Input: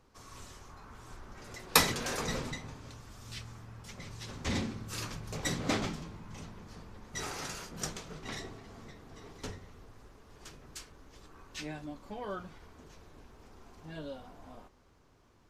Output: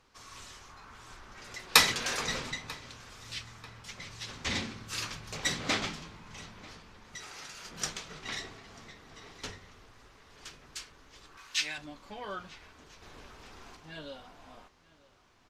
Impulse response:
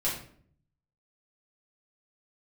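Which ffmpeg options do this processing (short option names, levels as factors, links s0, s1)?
-filter_complex "[0:a]asettb=1/sr,asplit=3[s0][s1][s2];[s0]atrim=end=11.374[s3];[s1]atrim=start=11.37:end=11.78,asetpts=PTS-STARTPTS,afade=t=in:d=0.004:c=qsin,afade=t=out:st=0.406:d=0.004:c=qsin,tiltshelf=f=900:g=-9.5[s4];[s2]atrim=start=11.776[s5];[s3][s4]acrossfade=d=0.004:c1=hsin:c2=qsin[s6];[s6][s5]acrossfade=d=0.004:c1=qsin:c2=hsin,asettb=1/sr,asplit=3[s7][s8][s9];[s7]atrim=end=13.024[s10];[s8]atrim=start=13.02:end=13.77,asetpts=PTS-STARTPTS,afade=t=in:d=0.004:c=qsin,afade=t=out:st=0.746:d=0.004:c=qsin,acontrast=39[s11];[s9]atrim=start=13.766[s12];[s10][s11]acrossfade=d=0.004:c1=hsin:c2=qsin[s13];[s13][s12]acrossfade=d=0.004:c1=qsin:c2=hsin,asplit=2[s14][s15];[s15]adelay=941,lowpass=f=4300:p=1,volume=0.0891,asplit=2[s16][s17];[s17]adelay=941,lowpass=f=4300:p=1,volume=0.47,asplit=2[s18][s19];[s19]adelay=941,lowpass=f=4300:p=1,volume=0.47[s20];[s14][s16][s18][s20]amix=inputs=4:normalize=0,asettb=1/sr,asplit=3[s21][s22][s23];[s21]atrim=end=6.754[s24];[s22]atrim=start=6.75:end=7.65,asetpts=PTS-STARTPTS,afade=t=in:d=0.004:c=qsin,afade=t=out:st=0.896:d=0.004:c=qsin,acompressor=threshold=0.00501:ratio=6[s25];[s23]atrim=start=7.646[s26];[s24][s25]acrossfade=d=0.004:c1=hsin:c2=qsin[s27];[s27][s26]acrossfade=d=0.004:c1=qsin:c2=hsin,equalizer=f=3100:w=0.33:g=11.5,volume=0.562"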